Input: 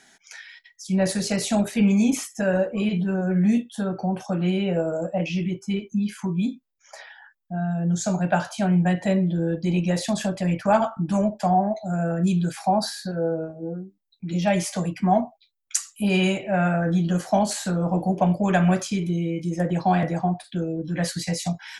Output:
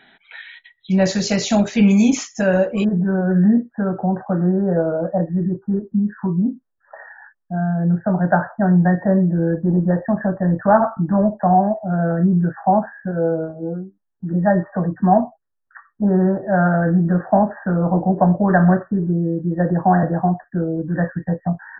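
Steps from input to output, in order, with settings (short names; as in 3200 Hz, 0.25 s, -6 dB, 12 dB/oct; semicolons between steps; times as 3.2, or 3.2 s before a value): brick-wall FIR low-pass 4100 Hz, from 0.9 s 7300 Hz, from 2.83 s 1900 Hz; gain +5.5 dB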